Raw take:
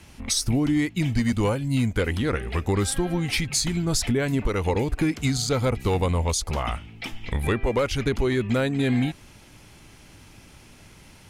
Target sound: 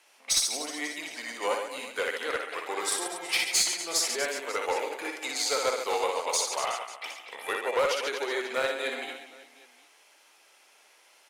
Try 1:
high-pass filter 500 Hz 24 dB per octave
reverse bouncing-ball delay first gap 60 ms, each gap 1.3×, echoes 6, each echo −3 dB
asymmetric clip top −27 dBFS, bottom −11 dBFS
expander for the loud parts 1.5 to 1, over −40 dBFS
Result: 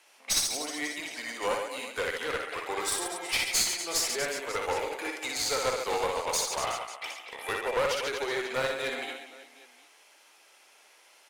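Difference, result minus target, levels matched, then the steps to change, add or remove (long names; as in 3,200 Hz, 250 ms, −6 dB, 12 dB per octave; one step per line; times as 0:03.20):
asymmetric clip: distortion +11 dB
change: asymmetric clip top −19 dBFS, bottom −11 dBFS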